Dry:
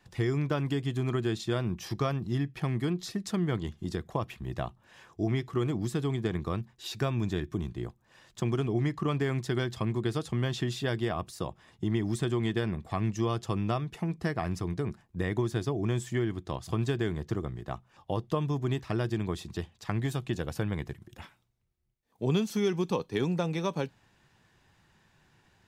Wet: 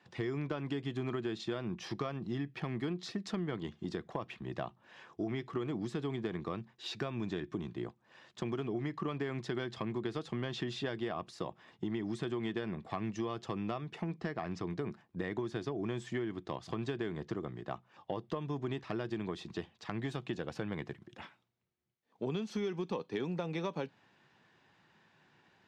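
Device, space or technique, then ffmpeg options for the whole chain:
AM radio: -filter_complex "[0:a]asettb=1/sr,asplit=3[a][b][c];[a]atrim=end=14.174[d];[b]atrim=start=14.17:end=14.67,asetpts=PTS-STARTPTS,afade=t=in:d=0.004:c=qsin,afade=t=out:st=0.496:d=0.004:c=qsin,lowpass=f=8k:w=0.5412,lowpass=f=8k:w=1.3066[e];[c]atrim=start=14.666[f];[d][e]acrossfade=d=0.004:c1=hsin:c2=qsin[g];[g][f]acrossfade=d=0.004:c1=qsin:c2=hsin,highpass=180,lowpass=4.3k,acompressor=threshold=-32dB:ratio=6,asoftclip=type=tanh:threshold=-21.5dB"

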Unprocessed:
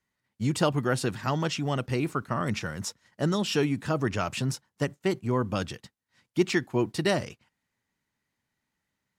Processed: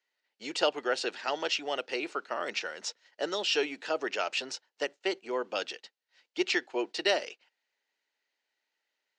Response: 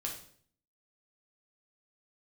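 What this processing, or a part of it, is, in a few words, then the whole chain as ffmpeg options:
phone speaker on a table: -af "highpass=f=410:w=0.5412,highpass=f=410:w=1.3066,equalizer=f=1.1k:t=q:w=4:g=-8,equalizer=f=2.8k:t=q:w=4:g=5,equalizer=f=4.3k:t=q:w=4:g=4,lowpass=f=6.5k:w=0.5412,lowpass=f=6.5k:w=1.3066"

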